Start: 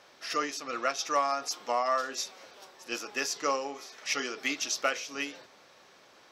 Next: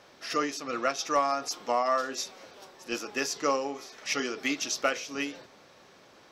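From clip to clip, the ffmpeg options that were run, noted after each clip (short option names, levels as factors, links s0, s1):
-af "lowshelf=f=390:g=9"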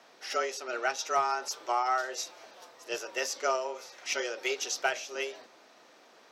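-af "afreqshift=120,volume=0.794"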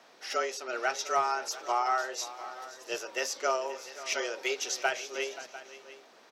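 -af "aecho=1:1:527|698:0.158|0.15"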